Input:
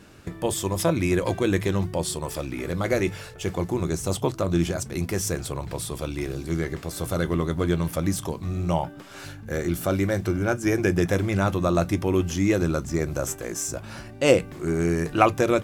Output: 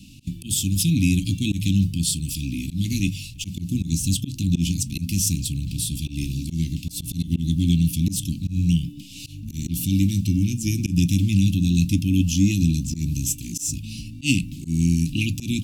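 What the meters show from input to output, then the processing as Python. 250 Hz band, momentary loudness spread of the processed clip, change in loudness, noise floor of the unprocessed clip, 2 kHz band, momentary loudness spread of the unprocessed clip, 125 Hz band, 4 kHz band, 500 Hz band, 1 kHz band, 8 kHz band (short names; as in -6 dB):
+3.5 dB, 9 LU, +2.5 dB, -42 dBFS, -4.0 dB, 9 LU, +6.0 dB, +6.0 dB, under -20 dB, under -40 dB, +6.0 dB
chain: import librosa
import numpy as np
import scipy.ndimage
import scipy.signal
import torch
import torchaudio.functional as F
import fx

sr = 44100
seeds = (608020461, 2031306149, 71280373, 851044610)

y = scipy.signal.sosfilt(scipy.signal.cheby1(5, 1.0, [280.0, 2600.0], 'bandstop', fs=sr, output='sos'), x)
y = fx.auto_swell(y, sr, attack_ms=106.0)
y = y * librosa.db_to_amplitude(7.5)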